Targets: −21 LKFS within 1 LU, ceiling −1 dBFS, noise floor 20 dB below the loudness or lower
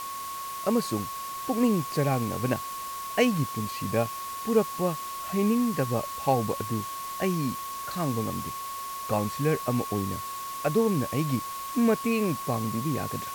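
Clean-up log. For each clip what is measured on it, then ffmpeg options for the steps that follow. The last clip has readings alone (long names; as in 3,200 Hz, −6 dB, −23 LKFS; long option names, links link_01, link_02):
interfering tone 1,100 Hz; level of the tone −34 dBFS; background noise floor −36 dBFS; target noise floor −49 dBFS; integrated loudness −28.5 LKFS; sample peak −9.5 dBFS; target loudness −21.0 LKFS
→ -af "bandreject=frequency=1100:width=30"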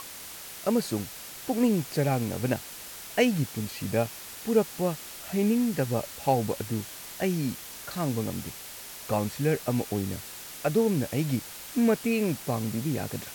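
interfering tone none found; background noise floor −42 dBFS; target noise floor −49 dBFS
→ -af "afftdn=noise_reduction=7:noise_floor=-42"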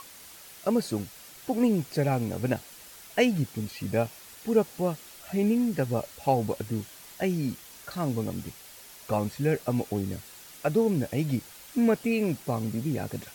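background noise floor −49 dBFS; integrated loudness −29.0 LKFS; sample peak −10.0 dBFS; target loudness −21.0 LKFS
→ -af "volume=8dB"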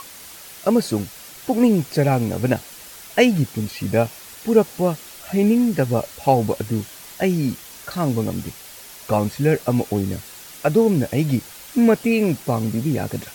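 integrated loudness −21.0 LKFS; sample peak −2.0 dBFS; background noise floor −41 dBFS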